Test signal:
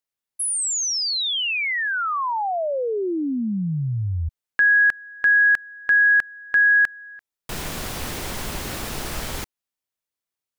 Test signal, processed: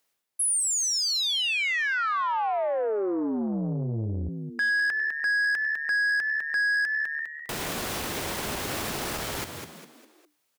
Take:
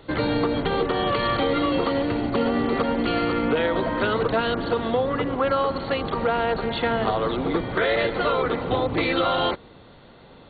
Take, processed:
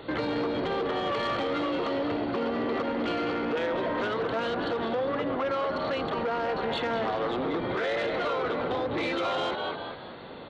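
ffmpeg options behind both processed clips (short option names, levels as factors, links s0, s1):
-filter_complex "[0:a]asplit=2[s0][s1];[s1]acompressor=threshold=0.0224:ratio=6:attack=0.2:release=106,volume=0.75[s2];[s0][s2]amix=inputs=2:normalize=0,asplit=5[s3][s4][s5][s6][s7];[s4]adelay=202,afreqshift=74,volume=0.316[s8];[s5]adelay=404,afreqshift=148,volume=0.12[s9];[s6]adelay=606,afreqshift=222,volume=0.0457[s10];[s7]adelay=808,afreqshift=296,volume=0.0174[s11];[s3][s8][s9][s10][s11]amix=inputs=5:normalize=0,areverse,acompressor=mode=upward:threshold=0.00316:ratio=1.5:attack=5.9:release=165:knee=2.83:detection=peak,areverse,lowshelf=f=450:g=4,asoftclip=type=tanh:threshold=0.158,bass=f=250:g=-7,treble=f=4000:g=-1,alimiter=limit=0.0794:level=0:latency=1:release=153,highpass=f=86:p=1"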